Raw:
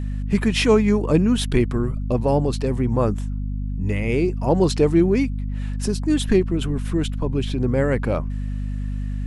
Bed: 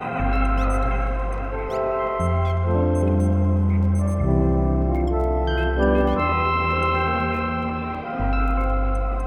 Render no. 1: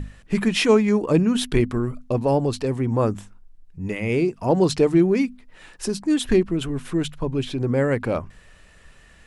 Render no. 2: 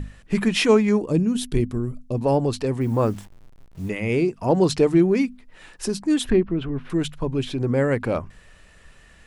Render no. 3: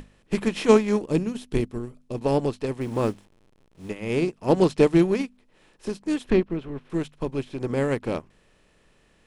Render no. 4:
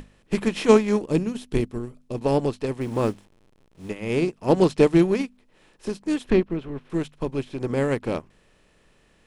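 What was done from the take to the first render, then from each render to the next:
notches 50/100/150/200/250 Hz
1.03–2.21 bell 1400 Hz -11 dB 2.9 oct; 2.81–3.89 level-crossing sampler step -45.5 dBFS; 6.3–6.9 air absorption 330 m
per-bin compression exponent 0.6; upward expander 2.5:1, over -28 dBFS
gain +1 dB

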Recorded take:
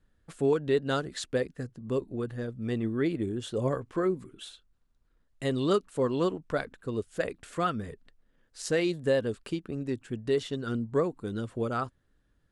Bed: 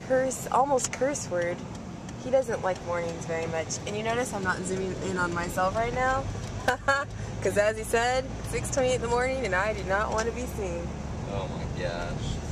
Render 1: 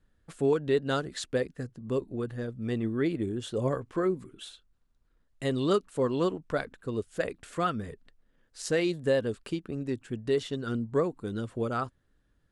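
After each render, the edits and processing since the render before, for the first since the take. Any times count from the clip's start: nothing audible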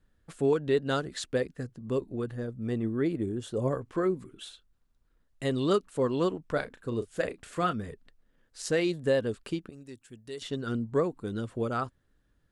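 2.35–3.85 bell 3100 Hz -5.5 dB 1.9 oct; 6.52–7.73 doubler 34 ms -11 dB; 9.69–10.42 pre-emphasis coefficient 0.8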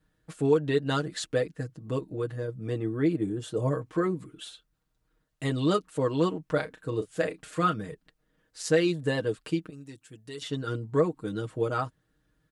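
HPF 45 Hz; comb 6.4 ms, depth 80%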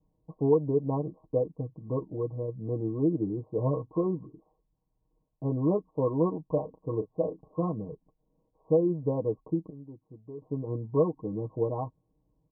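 Chebyshev low-pass 1100 Hz, order 10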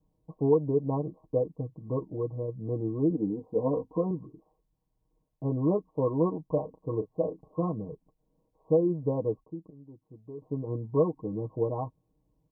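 3.1–4.11 comb 4.1 ms, depth 70%; 9.44–10.26 fade in, from -14 dB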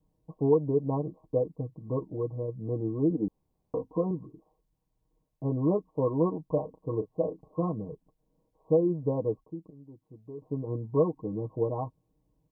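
3.28–3.74 room tone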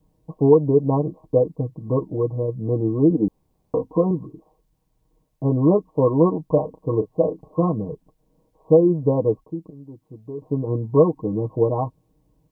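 gain +9.5 dB; limiter -3 dBFS, peak gain reduction 1 dB

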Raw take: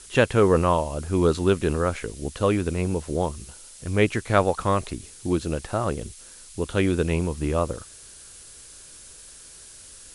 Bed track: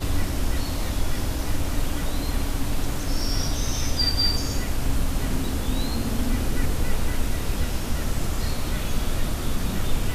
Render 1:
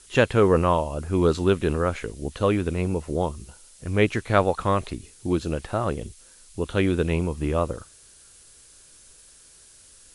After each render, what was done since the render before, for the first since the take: noise print and reduce 6 dB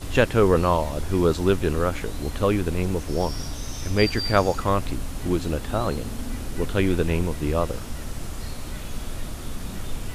add bed track -7 dB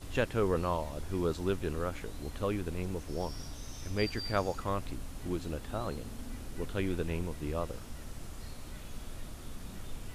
gain -11.5 dB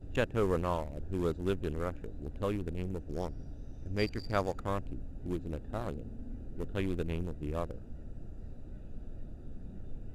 Wiener smoothing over 41 samples; bell 7300 Hz +4 dB 0.28 oct

